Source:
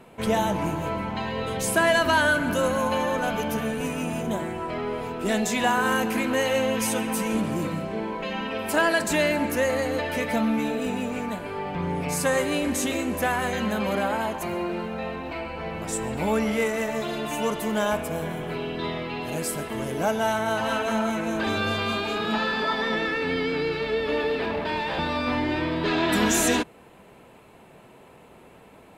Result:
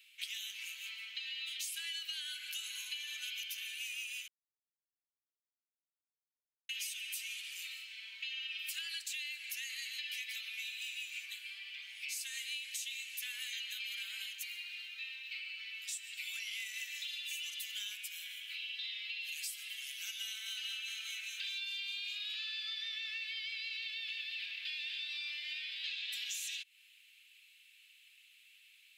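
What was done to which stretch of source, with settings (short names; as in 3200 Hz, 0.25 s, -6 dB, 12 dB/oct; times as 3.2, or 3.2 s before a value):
4.28–6.69 mute
whole clip: steep high-pass 2600 Hz 36 dB/oct; bell 9600 Hz -10.5 dB 1.6 oct; compressor 10:1, threshold -43 dBFS; gain +5 dB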